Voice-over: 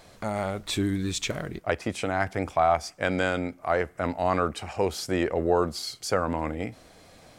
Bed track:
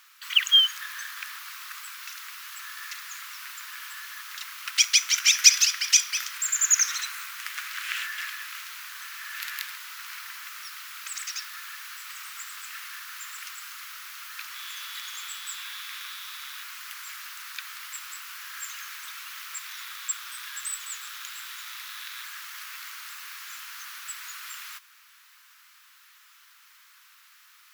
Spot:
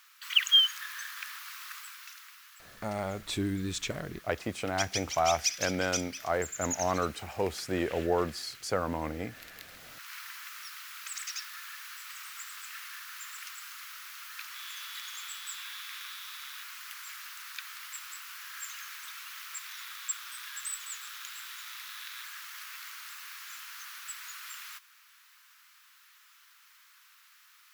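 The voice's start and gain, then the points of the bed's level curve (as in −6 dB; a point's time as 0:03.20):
2.60 s, −5.0 dB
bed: 0:01.72 −3.5 dB
0:02.58 −14.5 dB
0:09.59 −14.5 dB
0:10.17 −4 dB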